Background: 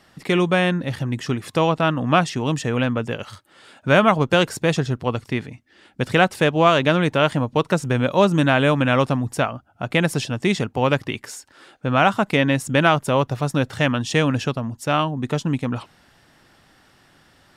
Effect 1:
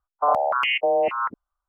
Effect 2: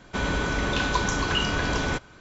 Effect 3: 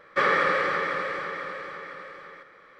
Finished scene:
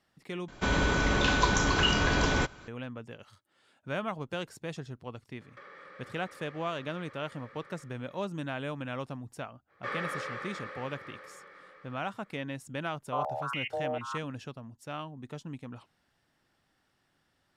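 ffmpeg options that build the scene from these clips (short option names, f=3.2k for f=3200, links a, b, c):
-filter_complex "[3:a]asplit=2[a][b];[0:a]volume=-19dB[c];[a]acompressor=threshold=-39dB:ratio=6:attack=3.2:release=140:knee=1:detection=peak[d];[b]asplit=2[e][f];[f]adelay=21,volume=-4dB[g];[e][g]amix=inputs=2:normalize=0[h];[c]asplit=2[i][j];[i]atrim=end=0.484[k];[2:a]atrim=end=2.2,asetpts=PTS-STARTPTS,volume=-0.5dB[l];[j]atrim=start=2.676[m];[d]atrim=end=2.79,asetpts=PTS-STARTPTS,volume=-10dB,afade=t=in:d=0.004:c=hsin,afade=t=out:st=2.786:d=0.004:c=hsin,adelay=238581S[n];[h]atrim=end=2.79,asetpts=PTS-STARTPTS,volume=-15dB,afade=t=in:d=0.05,afade=t=out:st=2.74:d=0.05,adelay=9670[o];[1:a]atrim=end=1.68,asetpts=PTS-STARTPTS,volume=-13dB,afade=t=in:d=0.004:c=hsin,afade=t=out:st=1.676:d=0.004:c=hsin,adelay=12900[p];[k][l]acrossfade=d=0.004:c1=hsin:c2=hsin[q];[q][m]acrossfade=d=0.004:c1=hsin:c2=hsin[r];[r][n][o][p]amix=inputs=4:normalize=0"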